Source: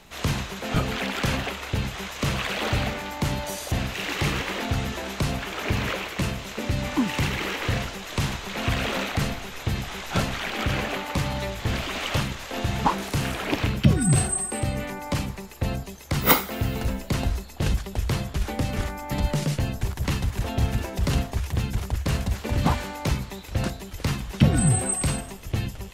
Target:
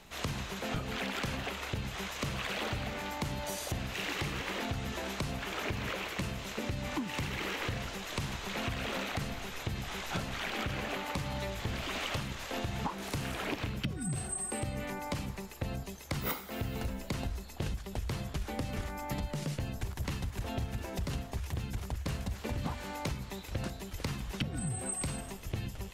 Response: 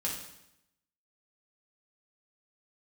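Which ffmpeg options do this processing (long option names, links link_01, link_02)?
-af "acompressor=threshold=-27dB:ratio=12,volume=-4.5dB"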